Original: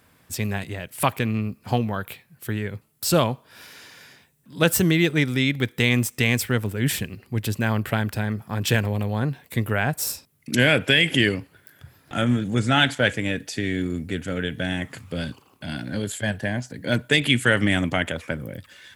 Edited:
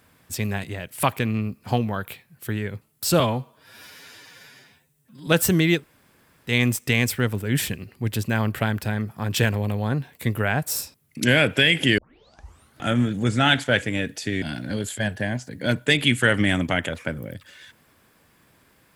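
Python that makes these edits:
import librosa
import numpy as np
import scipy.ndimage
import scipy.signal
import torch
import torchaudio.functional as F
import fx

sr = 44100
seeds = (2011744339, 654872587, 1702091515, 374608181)

y = fx.edit(x, sr, fx.stretch_span(start_s=3.2, length_s=1.38, factor=1.5),
    fx.room_tone_fill(start_s=5.1, length_s=0.71, crossfade_s=0.1),
    fx.tape_start(start_s=11.29, length_s=0.85),
    fx.cut(start_s=13.73, length_s=1.92), tone=tone)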